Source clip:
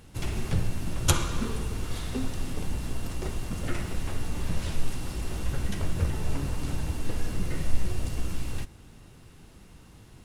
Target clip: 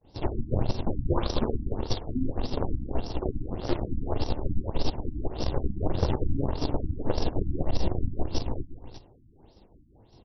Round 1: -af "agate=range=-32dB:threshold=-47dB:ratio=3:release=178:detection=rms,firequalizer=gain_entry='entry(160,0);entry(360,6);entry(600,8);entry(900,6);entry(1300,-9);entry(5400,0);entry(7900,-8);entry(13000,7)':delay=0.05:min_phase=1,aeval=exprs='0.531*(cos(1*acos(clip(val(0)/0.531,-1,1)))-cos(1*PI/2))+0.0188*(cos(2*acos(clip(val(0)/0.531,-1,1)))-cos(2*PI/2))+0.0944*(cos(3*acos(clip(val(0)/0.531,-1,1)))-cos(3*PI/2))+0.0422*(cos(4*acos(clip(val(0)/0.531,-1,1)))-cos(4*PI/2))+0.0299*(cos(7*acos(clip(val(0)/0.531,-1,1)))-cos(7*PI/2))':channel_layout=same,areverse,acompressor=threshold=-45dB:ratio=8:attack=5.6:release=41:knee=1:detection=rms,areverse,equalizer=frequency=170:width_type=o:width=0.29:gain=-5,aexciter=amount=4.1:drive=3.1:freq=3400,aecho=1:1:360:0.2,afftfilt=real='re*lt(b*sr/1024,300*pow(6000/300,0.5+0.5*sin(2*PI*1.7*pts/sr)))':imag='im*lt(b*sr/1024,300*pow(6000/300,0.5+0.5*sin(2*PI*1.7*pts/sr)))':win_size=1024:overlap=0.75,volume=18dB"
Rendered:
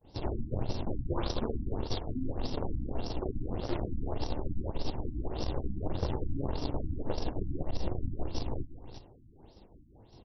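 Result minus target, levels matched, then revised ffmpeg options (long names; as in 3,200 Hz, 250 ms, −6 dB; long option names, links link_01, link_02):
downward compressor: peak gain reduction +7.5 dB
-af "agate=range=-32dB:threshold=-47dB:ratio=3:release=178:detection=rms,firequalizer=gain_entry='entry(160,0);entry(360,6);entry(600,8);entry(900,6);entry(1300,-9);entry(5400,0);entry(7900,-8);entry(13000,7)':delay=0.05:min_phase=1,aeval=exprs='0.531*(cos(1*acos(clip(val(0)/0.531,-1,1)))-cos(1*PI/2))+0.0188*(cos(2*acos(clip(val(0)/0.531,-1,1)))-cos(2*PI/2))+0.0944*(cos(3*acos(clip(val(0)/0.531,-1,1)))-cos(3*PI/2))+0.0422*(cos(4*acos(clip(val(0)/0.531,-1,1)))-cos(4*PI/2))+0.0299*(cos(7*acos(clip(val(0)/0.531,-1,1)))-cos(7*PI/2))':channel_layout=same,areverse,acompressor=threshold=-36.5dB:ratio=8:attack=5.6:release=41:knee=1:detection=rms,areverse,equalizer=frequency=170:width_type=o:width=0.29:gain=-5,aexciter=amount=4.1:drive=3.1:freq=3400,aecho=1:1:360:0.2,afftfilt=real='re*lt(b*sr/1024,300*pow(6000/300,0.5+0.5*sin(2*PI*1.7*pts/sr)))':imag='im*lt(b*sr/1024,300*pow(6000/300,0.5+0.5*sin(2*PI*1.7*pts/sr)))':win_size=1024:overlap=0.75,volume=18dB"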